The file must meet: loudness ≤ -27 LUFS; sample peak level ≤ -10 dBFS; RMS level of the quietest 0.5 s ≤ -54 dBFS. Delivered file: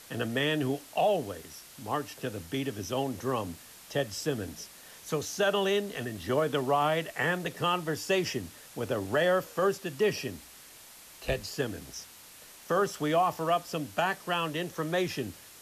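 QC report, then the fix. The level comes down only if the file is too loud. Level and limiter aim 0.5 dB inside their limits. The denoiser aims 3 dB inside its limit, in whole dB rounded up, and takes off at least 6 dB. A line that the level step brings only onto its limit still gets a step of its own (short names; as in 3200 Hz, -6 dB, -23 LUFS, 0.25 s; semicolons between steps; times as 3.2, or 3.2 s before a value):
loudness -30.5 LUFS: OK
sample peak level -16.5 dBFS: OK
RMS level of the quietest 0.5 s -51 dBFS: fail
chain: denoiser 6 dB, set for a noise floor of -51 dBFS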